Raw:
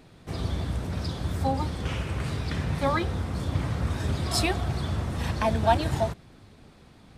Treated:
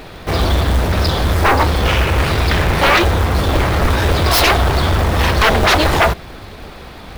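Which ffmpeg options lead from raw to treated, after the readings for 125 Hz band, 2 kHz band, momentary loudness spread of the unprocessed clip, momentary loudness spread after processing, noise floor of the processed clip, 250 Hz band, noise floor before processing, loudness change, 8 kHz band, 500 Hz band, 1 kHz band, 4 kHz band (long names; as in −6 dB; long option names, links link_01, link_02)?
+11.5 dB, +19.5 dB, 7 LU, 5 LU, −35 dBFS, +10.5 dB, −53 dBFS, +14.0 dB, +13.5 dB, +13.0 dB, +14.5 dB, +17.5 dB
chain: -af "aeval=exprs='0.398*sin(PI/2*7.08*val(0)/0.398)':channel_layout=same,equalizer=frequency=125:width_type=o:width=1:gain=-10,equalizer=frequency=250:width_type=o:width=1:gain=-7,equalizer=frequency=8000:width_type=o:width=1:gain=-10,acrusher=bits=5:mode=log:mix=0:aa=0.000001,volume=2dB"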